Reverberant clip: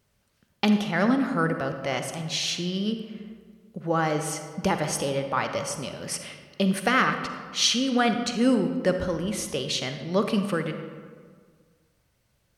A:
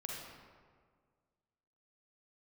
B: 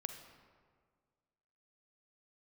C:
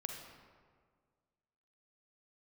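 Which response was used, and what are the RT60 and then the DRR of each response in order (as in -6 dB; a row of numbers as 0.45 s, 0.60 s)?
B; 1.8 s, 1.8 s, 1.8 s; -2.5 dB, 6.5 dB, 2.5 dB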